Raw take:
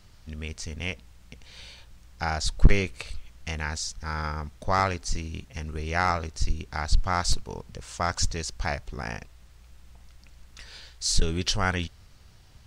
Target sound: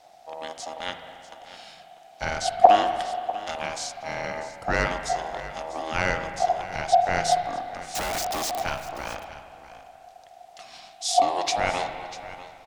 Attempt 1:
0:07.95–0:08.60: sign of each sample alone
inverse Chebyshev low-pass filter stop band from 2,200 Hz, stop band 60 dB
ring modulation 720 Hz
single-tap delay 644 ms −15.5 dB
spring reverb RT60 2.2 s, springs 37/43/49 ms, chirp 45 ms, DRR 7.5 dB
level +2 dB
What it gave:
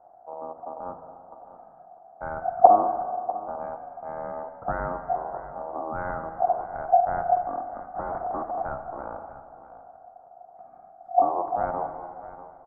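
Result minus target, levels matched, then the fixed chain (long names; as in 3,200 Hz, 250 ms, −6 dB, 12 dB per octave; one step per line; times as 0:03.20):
2,000 Hz band −11.5 dB
0:07.95–0:08.60: sign of each sample alone
ring modulation 720 Hz
single-tap delay 644 ms −15.5 dB
spring reverb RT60 2.2 s, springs 37/43/49 ms, chirp 45 ms, DRR 7.5 dB
level +2 dB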